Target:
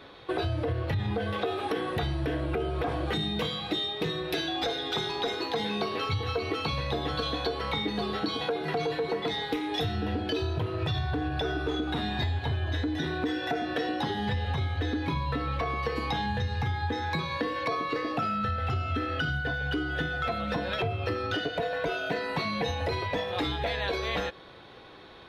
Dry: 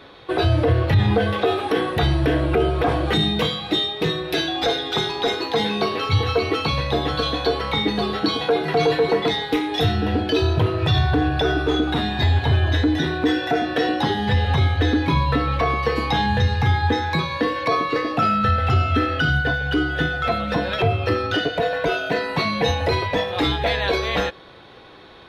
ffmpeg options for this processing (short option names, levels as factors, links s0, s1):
-af "acompressor=threshold=0.0794:ratio=6,volume=0.596"